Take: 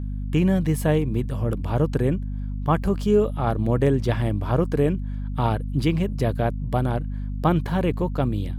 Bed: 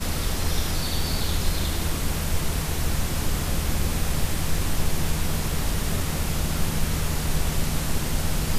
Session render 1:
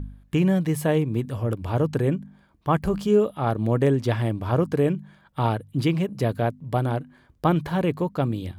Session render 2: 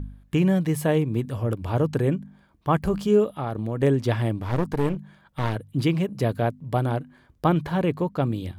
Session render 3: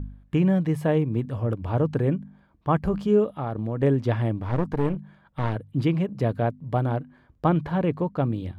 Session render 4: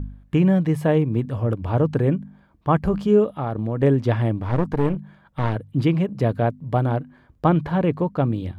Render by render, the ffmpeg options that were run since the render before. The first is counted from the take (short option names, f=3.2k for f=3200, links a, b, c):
-af "bandreject=f=50:t=h:w=4,bandreject=f=100:t=h:w=4,bandreject=f=150:t=h:w=4,bandreject=f=200:t=h:w=4,bandreject=f=250:t=h:w=4"
-filter_complex "[0:a]asettb=1/sr,asplit=3[a][b][c];[a]atrim=end=3.244[d];[b]atrim=start=3.24:end=3.83,asetpts=PTS-STARTPTS,afade=t=in:d=0.004:c=qsin,afade=t=out:st=0.586:d=0.004:c=qsin,acompressor=threshold=-24dB:ratio=5:attack=3.2:release=140:knee=1:detection=peak[e];[c]atrim=start=3.826[f];[d][e]acrossfade=d=0.004:c1=hsin:c2=qsin[g];[g][f]acrossfade=d=0.004:c1=qsin:c2=hsin,asettb=1/sr,asplit=3[h][i][j];[h]atrim=end=4.424[k];[i]atrim=start=4.42:end=5.56,asetpts=PTS-STARTPTS,afade=t=in:d=0.004:c=qsin,afade=t=out:st=1.136:d=0.004:c=qsin,aeval=exprs='clip(val(0),-1,0.0316)':c=same[l];[j]atrim=start=5.556[m];[k][l]acrossfade=d=0.004:c1=hsin:c2=qsin[n];[n][m]acrossfade=d=0.004:c1=qsin:c2=hsin,asettb=1/sr,asplit=3[o][p][q];[o]atrim=end=7.484[r];[p]atrim=start=7.48:end=8.27,asetpts=PTS-STARTPTS,afade=t=in:d=0.004:c=qsin,afade=t=out:st=0.786:d=0.004:c=qsin,highshelf=f=5.6k:g=-4[s];[q]atrim=start=8.266[t];[r][s]acrossfade=d=0.004:c1=hsin:c2=qsin[u];[u][t]acrossfade=d=0.004:c1=qsin:c2=hsin"
-af "lowpass=f=1.8k:p=1,equalizer=f=380:t=o:w=0.24:g=-2.5"
-af "volume=3.5dB"